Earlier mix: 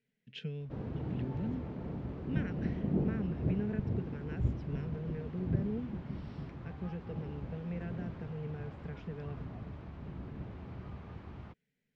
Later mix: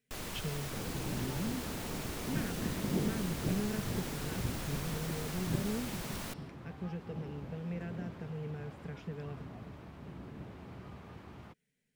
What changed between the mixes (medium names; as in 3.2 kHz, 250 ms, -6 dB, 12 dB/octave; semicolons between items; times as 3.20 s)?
first sound: unmuted; second sound: add bass shelf 90 Hz -11.5 dB; master: remove distance through air 140 m